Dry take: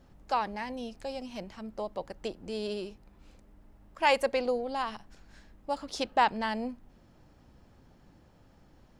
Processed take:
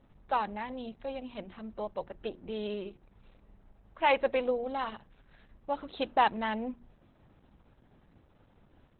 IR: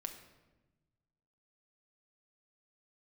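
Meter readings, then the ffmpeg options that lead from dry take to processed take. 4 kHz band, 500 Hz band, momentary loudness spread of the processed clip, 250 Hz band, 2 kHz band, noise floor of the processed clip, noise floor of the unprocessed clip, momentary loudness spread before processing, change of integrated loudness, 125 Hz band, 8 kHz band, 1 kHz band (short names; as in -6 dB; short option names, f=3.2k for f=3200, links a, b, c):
-3.5 dB, -0.5 dB, 16 LU, -1.0 dB, -1.5 dB, -65 dBFS, -60 dBFS, 15 LU, -1.0 dB, -1.0 dB, under -30 dB, -0.5 dB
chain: -af "bandreject=f=60:t=h:w=6,bandreject=f=120:t=h:w=6,bandreject=f=180:t=h:w=6,bandreject=f=240:t=h:w=6,bandreject=f=300:t=h:w=6,bandreject=f=360:t=h:w=6" -ar 48000 -c:a libopus -b:a 8k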